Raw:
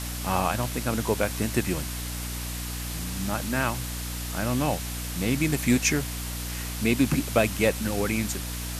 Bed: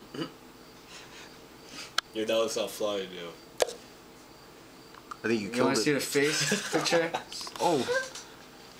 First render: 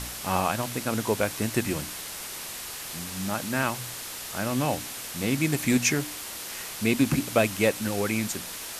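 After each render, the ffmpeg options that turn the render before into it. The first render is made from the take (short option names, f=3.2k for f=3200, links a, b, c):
-af "bandreject=f=60:t=h:w=4,bandreject=f=120:t=h:w=4,bandreject=f=180:t=h:w=4,bandreject=f=240:t=h:w=4,bandreject=f=300:t=h:w=4"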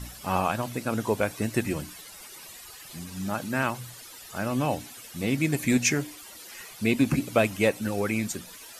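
-af "afftdn=nr=14:nf=-38"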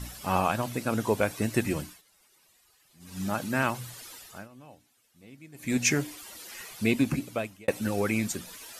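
-filter_complex "[0:a]asplit=6[a][b][c][d][e][f];[a]atrim=end=2.02,asetpts=PTS-STARTPTS,afade=t=out:st=1.79:d=0.23:silence=0.112202[g];[b]atrim=start=2.02:end=2.99,asetpts=PTS-STARTPTS,volume=-19dB[h];[c]atrim=start=2.99:end=4.48,asetpts=PTS-STARTPTS,afade=t=in:d=0.23:silence=0.112202,afade=t=out:st=1.13:d=0.36:silence=0.0630957[i];[d]atrim=start=4.48:end=5.54,asetpts=PTS-STARTPTS,volume=-24dB[j];[e]atrim=start=5.54:end=7.68,asetpts=PTS-STARTPTS,afade=t=in:d=0.36:silence=0.0630957,afade=t=out:st=1.27:d=0.87[k];[f]atrim=start=7.68,asetpts=PTS-STARTPTS,afade=t=in:d=0.004:c=hsin[l];[g][h][i][j][k][l]concat=n=6:v=0:a=1"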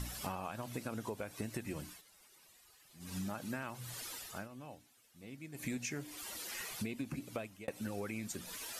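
-af "alimiter=limit=-16dB:level=0:latency=1:release=296,acompressor=threshold=-38dB:ratio=6"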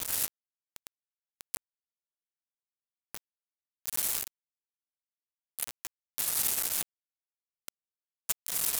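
-af "aexciter=amount=8.7:drive=6:freq=7.4k,acrusher=bits=3:mix=0:aa=0.000001"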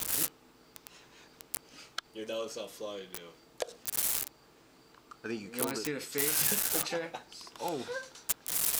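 -filter_complex "[1:a]volume=-9.5dB[a];[0:a][a]amix=inputs=2:normalize=0"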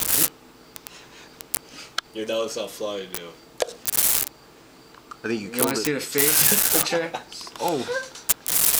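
-af "volume=11dB"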